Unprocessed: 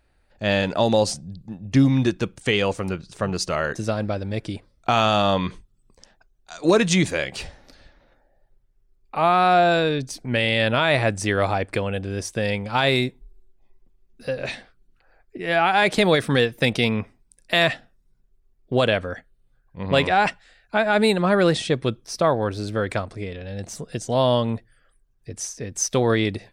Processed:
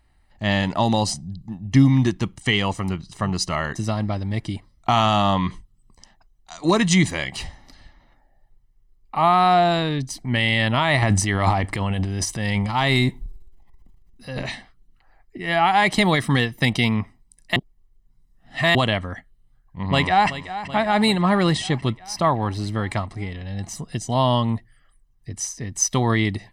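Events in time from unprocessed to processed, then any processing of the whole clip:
11.02–14.43 s: transient shaper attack -5 dB, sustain +10 dB
17.56–18.75 s: reverse
19.88–20.29 s: echo throw 380 ms, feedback 70%, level -13 dB
whole clip: comb 1 ms, depth 66%

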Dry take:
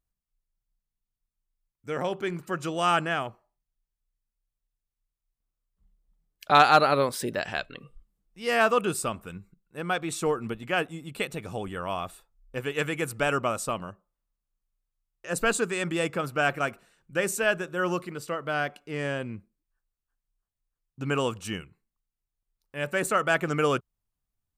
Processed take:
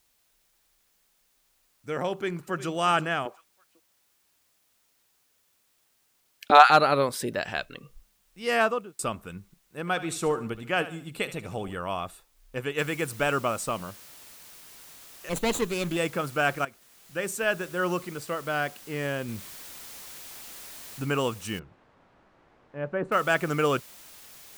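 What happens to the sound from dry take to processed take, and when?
2.12–2.71 s: echo throw 360 ms, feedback 25%, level -13.5 dB
3.25–6.70 s: LFO high-pass saw up 4 Hz 260–3400 Hz
8.55–8.99 s: studio fade out
9.80–11.75 s: feedback delay 73 ms, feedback 37%, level -14 dB
12.78 s: noise floor step -69 dB -49 dB
15.29–15.97 s: comb filter that takes the minimum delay 0.3 ms
16.65–17.69 s: fade in, from -15 dB
19.28–21.05 s: companding laws mixed up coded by mu
21.59–23.12 s: low-pass 1.1 kHz

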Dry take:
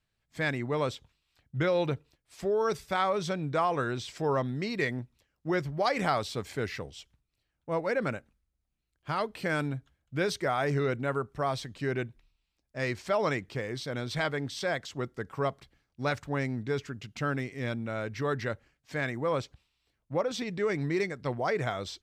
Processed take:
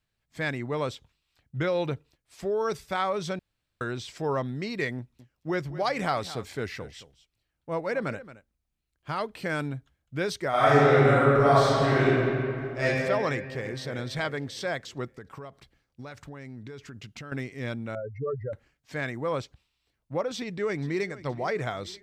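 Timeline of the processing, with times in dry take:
3.39–3.81 s: room tone
4.97–9.30 s: delay 223 ms -15.5 dB
10.49–12.84 s: reverb throw, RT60 2.7 s, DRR -10.5 dB
13.35–13.78 s: echo throw 300 ms, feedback 50%, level -8.5 dB
15.05–17.32 s: compression 16:1, threshold -37 dBFS
17.95–18.53 s: spectral contrast enhancement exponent 3.7
20.35–21.23 s: echo throw 470 ms, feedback 55%, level -17.5 dB

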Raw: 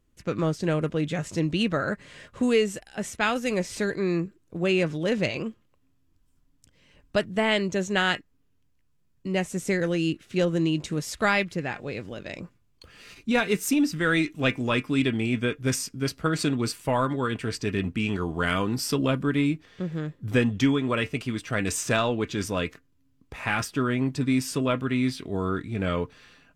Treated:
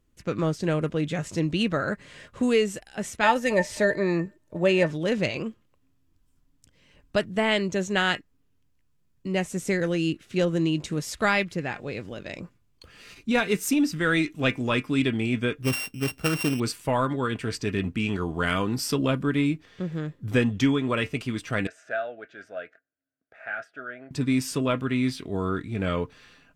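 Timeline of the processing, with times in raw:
3.23–4.91 s: small resonant body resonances 610/890/1800 Hz, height 18 dB, ringing for 90 ms
15.63–16.60 s: sorted samples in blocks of 16 samples
21.67–24.11 s: two resonant band-passes 1 kHz, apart 1.2 oct

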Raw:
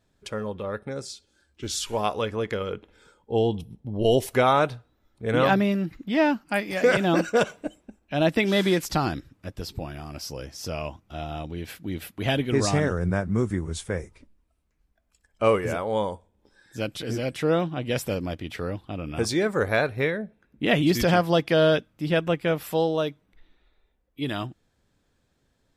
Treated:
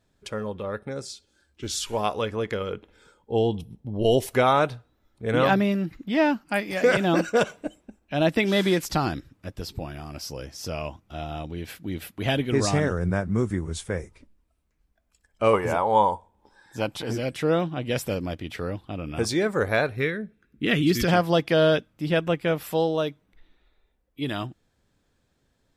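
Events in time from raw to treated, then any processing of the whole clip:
15.53–17.13 s: peaking EQ 900 Hz +14 dB 0.63 oct
19.96–21.08 s: high-order bell 730 Hz -10.5 dB 1.1 oct

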